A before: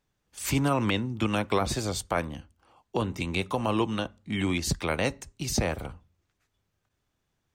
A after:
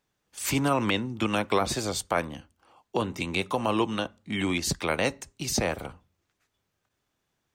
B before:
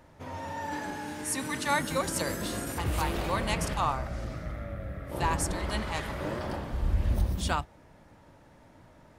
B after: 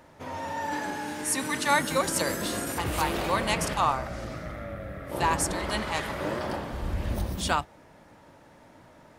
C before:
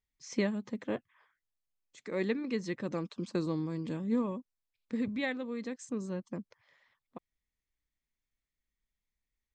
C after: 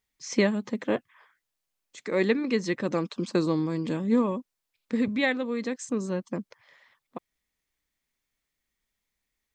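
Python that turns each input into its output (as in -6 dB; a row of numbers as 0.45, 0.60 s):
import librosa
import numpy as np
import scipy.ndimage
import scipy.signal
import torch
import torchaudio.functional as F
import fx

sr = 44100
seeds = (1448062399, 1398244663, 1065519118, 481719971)

y = fx.low_shelf(x, sr, hz=120.0, db=-11.0)
y = y * 10.0 ** (-30 / 20.0) / np.sqrt(np.mean(np.square(y)))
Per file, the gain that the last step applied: +2.0, +4.5, +9.5 dB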